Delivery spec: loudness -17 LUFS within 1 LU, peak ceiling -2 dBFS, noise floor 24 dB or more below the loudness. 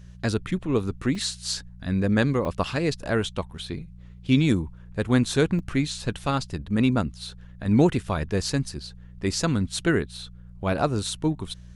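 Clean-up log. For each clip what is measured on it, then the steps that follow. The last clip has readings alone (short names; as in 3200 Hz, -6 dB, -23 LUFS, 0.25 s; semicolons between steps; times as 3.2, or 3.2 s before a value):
dropouts 3; longest dropout 3.0 ms; hum 60 Hz; harmonics up to 180 Hz; hum level -42 dBFS; loudness -25.5 LUFS; peak -7.0 dBFS; loudness target -17.0 LUFS
-> interpolate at 1.15/2.45/5.59, 3 ms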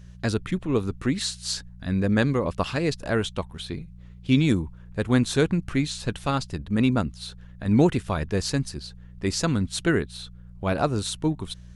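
dropouts 0; hum 60 Hz; harmonics up to 180 Hz; hum level -42 dBFS
-> de-hum 60 Hz, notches 3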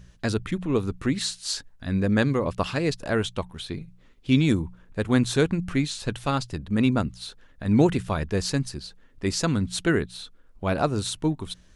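hum none; loudness -26.0 LUFS; peak -6.5 dBFS; loudness target -17.0 LUFS
-> gain +9 dB; limiter -2 dBFS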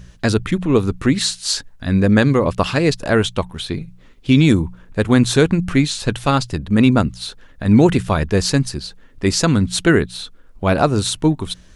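loudness -17.0 LUFS; peak -2.0 dBFS; noise floor -45 dBFS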